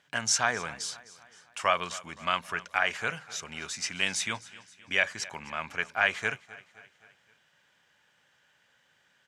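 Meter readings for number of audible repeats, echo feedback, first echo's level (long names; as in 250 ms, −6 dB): 3, 52%, −19.5 dB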